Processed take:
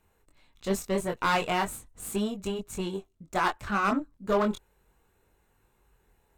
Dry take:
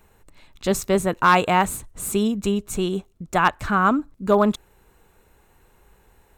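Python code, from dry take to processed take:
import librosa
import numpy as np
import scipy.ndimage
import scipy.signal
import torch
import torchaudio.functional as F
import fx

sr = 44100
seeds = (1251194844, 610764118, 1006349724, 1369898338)

y = 10.0 ** (-15.5 / 20.0) * np.tanh(x / 10.0 ** (-15.5 / 20.0))
y = fx.cheby_harmonics(y, sr, harmonics=(2, 3), levels_db=(-15, -14), full_scale_db=-15.5)
y = fx.chorus_voices(y, sr, voices=2, hz=0.38, base_ms=23, depth_ms=2.3, mix_pct=40)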